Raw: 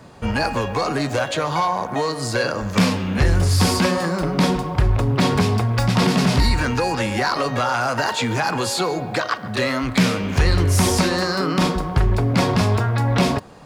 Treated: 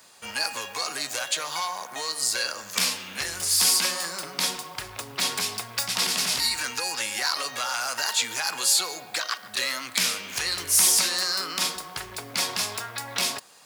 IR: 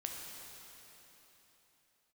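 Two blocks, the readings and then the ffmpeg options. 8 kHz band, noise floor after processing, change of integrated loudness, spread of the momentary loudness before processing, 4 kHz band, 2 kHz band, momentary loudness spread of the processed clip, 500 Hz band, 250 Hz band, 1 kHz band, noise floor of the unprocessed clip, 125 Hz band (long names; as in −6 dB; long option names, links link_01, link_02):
+6.5 dB, −44 dBFS, −4.5 dB, 5 LU, +2.0 dB, −5.0 dB, 11 LU, −16.5 dB, −23.0 dB, −10.5 dB, −30 dBFS, −28.5 dB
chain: -af "aderivative,volume=6.5dB"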